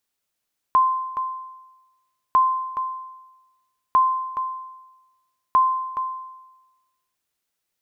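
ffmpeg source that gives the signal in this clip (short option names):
-f lavfi -i "aevalsrc='0.299*(sin(2*PI*1040*mod(t,1.6))*exp(-6.91*mod(t,1.6)/1.1)+0.316*sin(2*PI*1040*max(mod(t,1.6)-0.42,0))*exp(-6.91*max(mod(t,1.6)-0.42,0)/1.1))':d=6.4:s=44100"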